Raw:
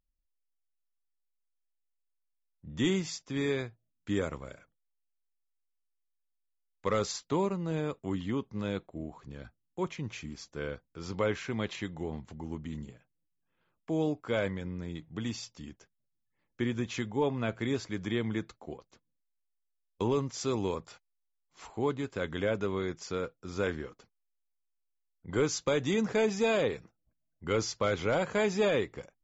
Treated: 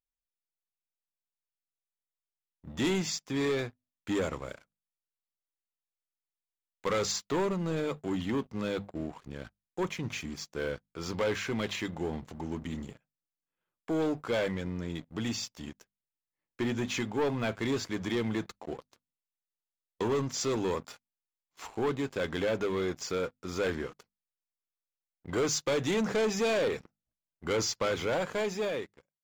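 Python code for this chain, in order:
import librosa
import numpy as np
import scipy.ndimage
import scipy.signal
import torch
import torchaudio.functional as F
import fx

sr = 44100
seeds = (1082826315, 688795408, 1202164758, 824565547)

y = fx.fade_out_tail(x, sr, length_s=1.57)
y = fx.low_shelf(y, sr, hz=210.0, db=-5.0)
y = fx.hum_notches(y, sr, base_hz=50, count=5)
y = fx.leveller(y, sr, passes=3)
y = y * librosa.db_to_amplitude(-5.5)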